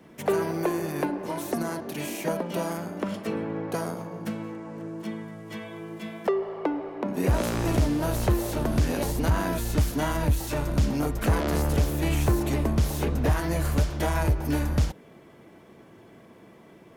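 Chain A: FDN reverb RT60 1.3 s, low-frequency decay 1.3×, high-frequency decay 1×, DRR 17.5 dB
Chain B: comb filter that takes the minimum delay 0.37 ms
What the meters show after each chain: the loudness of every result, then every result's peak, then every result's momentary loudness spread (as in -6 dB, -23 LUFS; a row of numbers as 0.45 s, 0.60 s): -27.5 LUFS, -28.0 LUFS; -14.5 dBFS, -14.0 dBFS; 10 LU, 11 LU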